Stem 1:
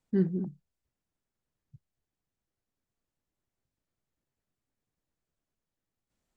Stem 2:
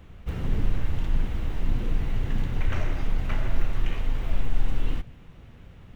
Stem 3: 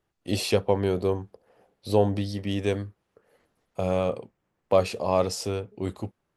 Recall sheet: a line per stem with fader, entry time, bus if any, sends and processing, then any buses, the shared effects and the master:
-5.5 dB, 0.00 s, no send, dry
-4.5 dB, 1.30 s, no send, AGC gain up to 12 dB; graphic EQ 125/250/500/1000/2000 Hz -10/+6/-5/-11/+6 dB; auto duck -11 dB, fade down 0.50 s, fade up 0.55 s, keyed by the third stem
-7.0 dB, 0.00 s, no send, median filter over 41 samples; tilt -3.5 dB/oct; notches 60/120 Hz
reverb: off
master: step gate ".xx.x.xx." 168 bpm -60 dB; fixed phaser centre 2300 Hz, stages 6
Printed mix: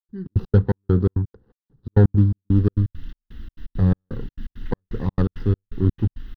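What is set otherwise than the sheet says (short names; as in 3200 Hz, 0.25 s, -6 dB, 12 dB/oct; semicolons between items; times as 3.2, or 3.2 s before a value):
stem 2: entry 1.30 s -> 2.05 s; stem 3 -7.0 dB -> +5.0 dB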